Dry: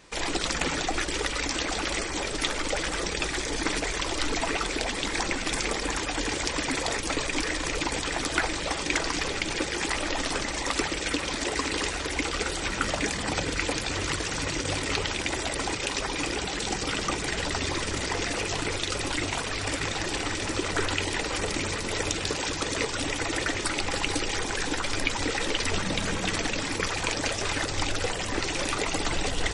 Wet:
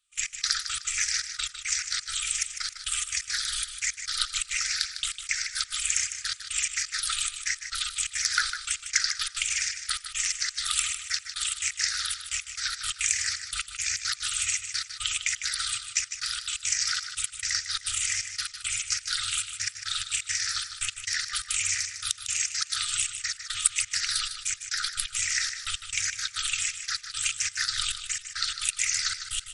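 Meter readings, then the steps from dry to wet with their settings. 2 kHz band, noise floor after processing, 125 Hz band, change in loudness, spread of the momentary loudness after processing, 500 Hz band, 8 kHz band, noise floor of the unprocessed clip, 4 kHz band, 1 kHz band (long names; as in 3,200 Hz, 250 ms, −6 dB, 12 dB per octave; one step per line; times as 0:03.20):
−3.0 dB, −47 dBFS, −17.5 dB, +0.5 dB, 5 LU, below −40 dB, +6.0 dB, −32 dBFS, +1.5 dB, −10.5 dB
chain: rippled gain that drifts along the octave scale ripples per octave 0.64, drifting −1.4 Hz, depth 13 dB
bass and treble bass −12 dB, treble +11 dB
gate pattern "..x..xx.x.xxxx" 173 BPM −24 dB
brick-wall band-stop 120–1,200 Hz
on a send: repeating echo 153 ms, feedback 33%, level −9.5 dB
on the sum: level −4 dB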